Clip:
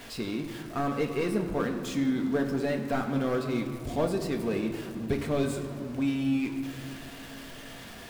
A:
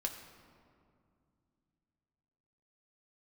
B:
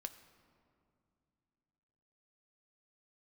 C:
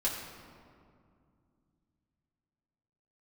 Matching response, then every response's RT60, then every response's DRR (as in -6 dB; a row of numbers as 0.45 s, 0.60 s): A; 2.4 s, 2.5 s, 2.3 s; 2.0 dB, 8.0 dB, -6.0 dB